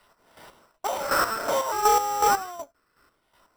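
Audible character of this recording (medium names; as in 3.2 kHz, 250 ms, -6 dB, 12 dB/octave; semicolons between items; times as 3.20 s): phasing stages 6, 0.6 Hz, lowest notch 800–4300 Hz; aliases and images of a low sample rate 6.7 kHz, jitter 0%; chopped level 2.7 Hz, depth 60%, duty 35%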